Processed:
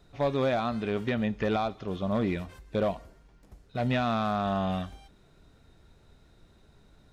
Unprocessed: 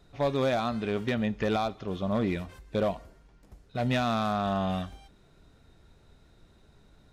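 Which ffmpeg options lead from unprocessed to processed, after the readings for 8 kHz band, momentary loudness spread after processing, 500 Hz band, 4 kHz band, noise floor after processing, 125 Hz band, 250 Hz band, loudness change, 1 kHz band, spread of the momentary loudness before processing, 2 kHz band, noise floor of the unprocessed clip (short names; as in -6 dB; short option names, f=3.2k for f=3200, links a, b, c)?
n/a, 8 LU, 0.0 dB, -2.0 dB, -60 dBFS, 0.0 dB, 0.0 dB, 0.0 dB, 0.0 dB, 8 LU, -0.5 dB, -60 dBFS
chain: -filter_complex "[0:a]acrossover=split=4100[a][b];[b]acompressor=threshold=-54dB:ratio=4:attack=1:release=60[c];[a][c]amix=inputs=2:normalize=0"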